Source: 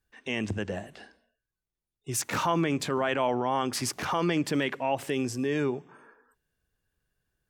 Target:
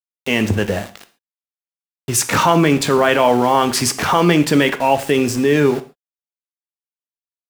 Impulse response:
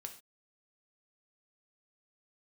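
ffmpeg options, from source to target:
-filter_complex "[0:a]aeval=exprs='val(0)*gte(abs(val(0)),0.01)':c=same,asplit=2[s0][s1];[1:a]atrim=start_sample=2205[s2];[s1][s2]afir=irnorm=-1:irlink=0,volume=2.51[s3];[s0][s3]amix=inputs=2:normalize=0,volume=1.88"

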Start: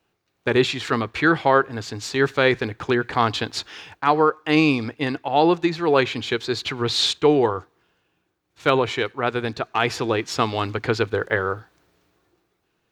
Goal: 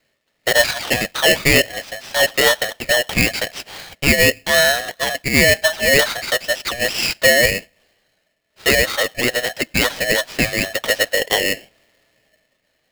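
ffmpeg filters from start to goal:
-af "acontrast=87,highpass=f=270:t=q:w=0.5412,highpass=f=270:t=q:w=1.307,lowpass=f=3600:t=q:w=0.5176,lowpass=f=3600:t=q:w=0.7071,lowpass=f=3600:t=q:w=1.932,afreqshift=230,aeval=exprs='val(0)*sgn(sin(2*PI*1200*n/s))':c=same,volume=0.841"

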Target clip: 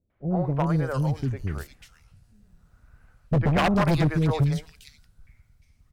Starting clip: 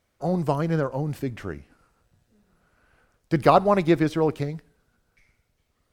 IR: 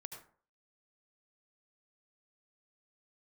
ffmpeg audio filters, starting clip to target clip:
-filter_complex "[0:a]asubboost=boost=7:cutoff=160,acrossover=split=430|2700[s0][s1][s2];[s1]adelay=100[s3];[s2]adelay=450[s4];[s0][s3][s4]amix=inputs=3:normalize=0,aeval=exprs='0.178*(abs(mod(val(0)/0.178+3,4)-2)-1)':c=same"

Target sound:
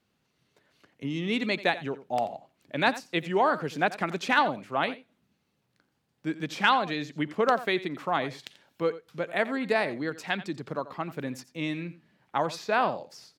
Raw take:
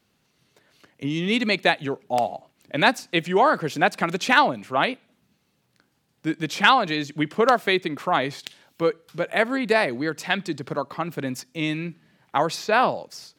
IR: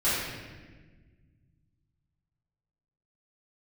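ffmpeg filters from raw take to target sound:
-filter_complex "[0:a]highshelf=f=4600:g=-5.5,asplit=2[s0][s1];[s1]aecho=0:1:87:0.158[s2];[s0][s2]amix=inputs=2:normalize=0,volume=0.531"

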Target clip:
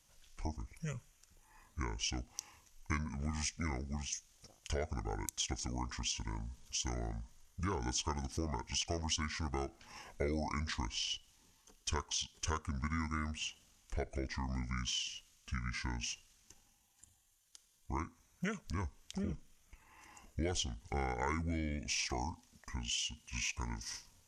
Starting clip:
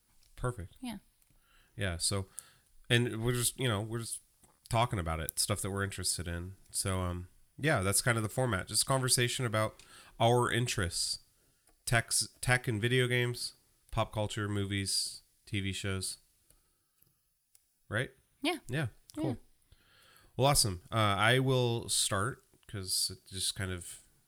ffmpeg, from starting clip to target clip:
-af "asetrate=27781,aresample=44100,atempo=1.5874,acompressor=threshold=0.00891:ratio=3,volume=1.5"

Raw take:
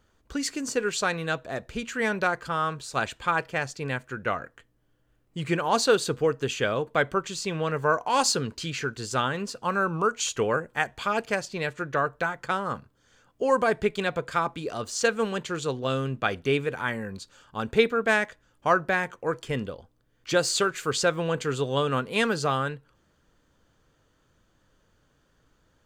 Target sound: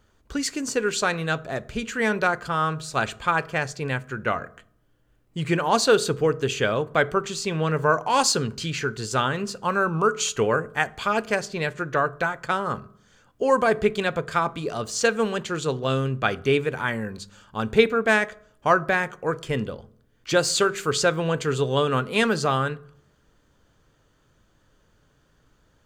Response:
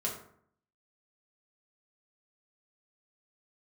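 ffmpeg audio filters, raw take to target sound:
-filter_complex "[0:a]asplit=2[s0][s1];[1:a]atrim=start_sample=2205,lowshelf=f=200:g=11[s2];[s1][s2]afir=irnorm=-1:irlink=0,volume=0.106[s3];[s0][s3]amix=inputs=2:normalize=0,volume=1.26"

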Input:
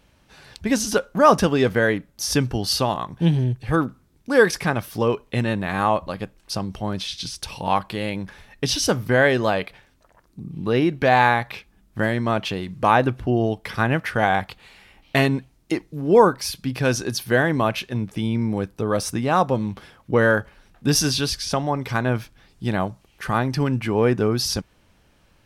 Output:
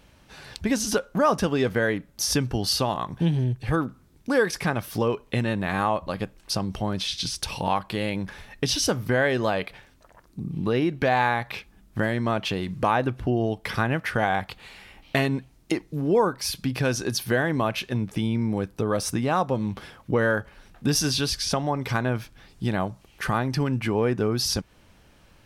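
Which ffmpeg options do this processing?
-af "acompressor=threshold=0.0398:ratio=2,volume=1.41"

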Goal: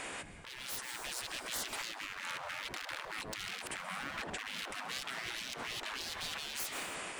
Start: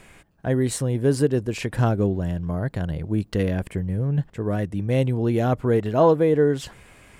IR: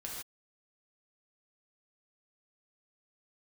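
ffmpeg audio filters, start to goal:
-filter_complex "[0:a]aresample=22050,aresample=44100,areverse,acompressor=threshold=0.0282:ratio=6,areverse,aeval=exprs='0.0126*(abs(mod(val(0)/0.0126+3,4)-2)-1)':c=same,asplit=2[s0][s1];[1:a]atrim=start_sample=2205,adelay=131[s2];[s1][s2]afir=irnorm=-1:irlink=0,volume=0.188[s3];[s0][s3]amix=inputs=2:normalize=0,afftfilt=real='re*lt(hypot(re,im),0.00794)':imag='im*lt(hypot(re,im),0.00794)':win_size=1024:overlap=0.75,alimiter=level_in=12.6:limit=0.0631:level=0:latency=1:release=166,volume=0.0794,dynaudnorm=f=350:g=5:m=2,volume=4.22"

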